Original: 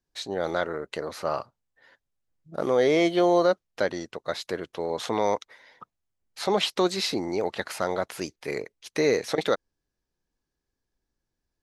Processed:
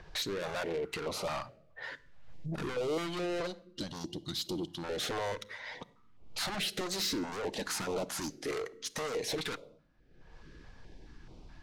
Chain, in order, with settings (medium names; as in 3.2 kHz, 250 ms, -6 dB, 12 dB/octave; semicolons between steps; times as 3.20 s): 6.85–9.14 s: fifteen-band graphic EQ 100 Hz -11 dB, 250 Hz +6 dB, 2.5 kHz -7 dB, 6.3 kHz +5 dB; compression 6:1, threshold -25 dBFS, peak gain reduction 9 dB; treble shelf 4.6 kHz -4 dB; upward compressor, threshold -38 dBFS; 3.47–4.83 s: time-frequency box 370–2800 Hz -19 dB; saturation -38 dBFS, distortion -4 dB; level-controlled noise filter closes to 1.9 kHz, open at -44 dBFS; simulated room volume 2000 m³, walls furnished, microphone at 0.51 m; step-sequenced notch 4.7 Hz 260–1700 Hz; trim +7.5 dB